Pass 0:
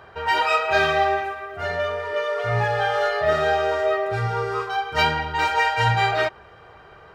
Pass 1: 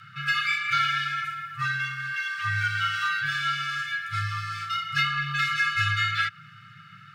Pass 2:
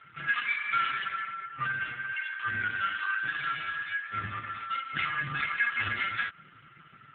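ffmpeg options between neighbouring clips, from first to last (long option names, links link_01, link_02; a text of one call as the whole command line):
ffmpeg -i in.wav -filter_complex "[0:a]acrossover=split=570|2200|4800[link_01][link_02][link_03][link_04];[link_01]acompressor=threshold=-34dB:ratio=4[link_05];[link_02]acompressor=threshold=-24dB:ratio=4[link_06];[link_03]acompressor=threshold=-33dB:ratio=4[link_07];[link_04]acompressor=threshold=-48dB:ratio=4[link_08];[link_05][link_06][link_07][link_08]amix=inputs=4:normalize=0,afftfilt=real='re*(1-between(b*sr/4096,120,1400))':imag='im*(1-between(b*sr/4096,120,1400))':win_size=4096:overlap=0.75,afreqshift=-220,volume=4dB" out.wav
ffmpeg -i in.wav -af "volume=-1dB" -ar 8000 -c:a libopencore_amrnb -b:a 5150 out.amr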